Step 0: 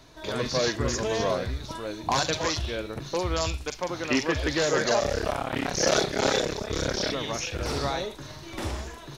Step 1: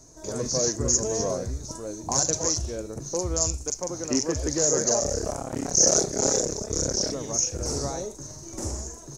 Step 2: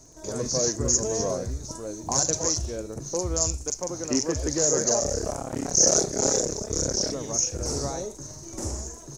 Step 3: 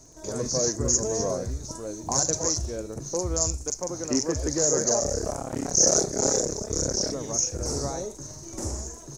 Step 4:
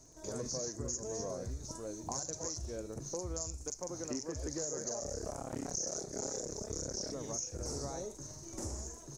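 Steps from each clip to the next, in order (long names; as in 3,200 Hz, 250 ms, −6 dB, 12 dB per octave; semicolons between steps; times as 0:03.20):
drawn EQ curve 490 Hz 0 dB, 3,500 Hz −19 dB, 6,500 Hz +15 dB, 12,000 Hz −2 dB
surface crackle 46 per second −43 dBFS
dynamic equaliser 3,000 Hz, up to −6 dB, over −47 dBFS, Q 1.8
downward compressor 6 to 1, threshold −28 dBFS, peak gain reduction 12.5 dB; level −7.5 dB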